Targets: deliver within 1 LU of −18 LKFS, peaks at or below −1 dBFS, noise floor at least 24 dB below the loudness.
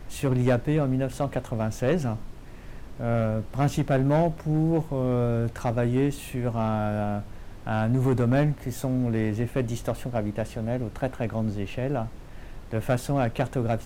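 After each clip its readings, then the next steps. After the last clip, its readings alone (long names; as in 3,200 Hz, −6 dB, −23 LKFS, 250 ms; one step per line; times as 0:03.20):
share of clipped samples 0.8%; peaks flattened at −15.5 dBFS; background noise floor −42 dBFS; target noise floor −51 dBFS; integrated loudness −26.5 LKFS; sample peak −15.5 dBFS; target loudness −18.0 LKFS
→ clipped peaks rebuilt −15.5 dBFS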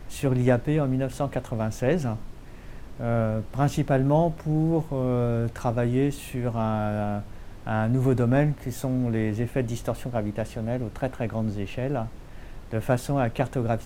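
share of clipped samples 0.0%; background noise floor −42 dBFS; target noise floor −51 dBFS
→ noise reduction from a noise print 9 dB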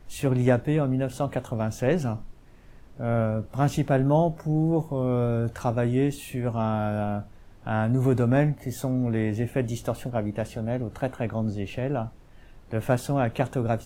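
background noise floor −50 dBFS; target noise floor −51 dBFS
→ noise reduction from a noise print 6 dB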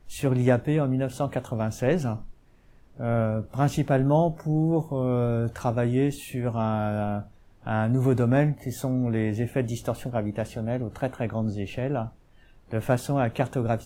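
background noise floor −56 dBFS; integrated loudness −26.5 LKFS; sample peak −8.0 dBFS; target loudness −18.0 LKFS
→ level +8.5 dB
brickwall limiter −1 dBFS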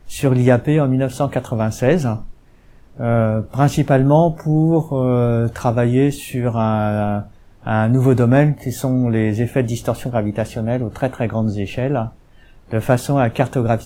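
integrated loudness −18.0 LKFS; sample peak −1.0 dBFS; background noise floor −47 dBFS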